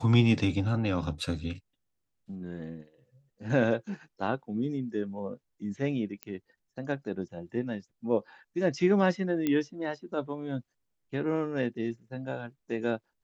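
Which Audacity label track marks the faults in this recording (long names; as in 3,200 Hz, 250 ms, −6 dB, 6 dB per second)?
6.230000	6.230000	click −21 dBFS
9.470000	9.470000	click −16 dBFS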